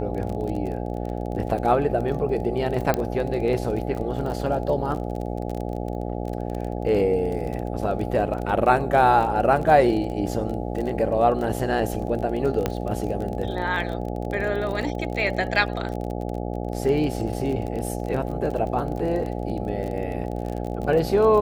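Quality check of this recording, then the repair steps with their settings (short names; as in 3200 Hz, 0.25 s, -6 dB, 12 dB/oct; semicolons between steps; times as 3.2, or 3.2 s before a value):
buzz 60 Hz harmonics 14 -29 dBFS
crackle 27/s -29 dBFS
2.94 pop -9 dBFS
12.66 pop -9 dBFS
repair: de-click; de-hum 60 Hz, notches 14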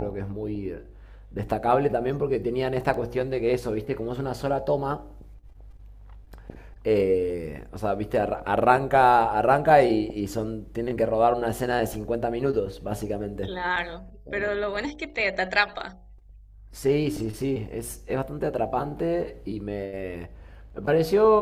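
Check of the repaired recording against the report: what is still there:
2.94 pop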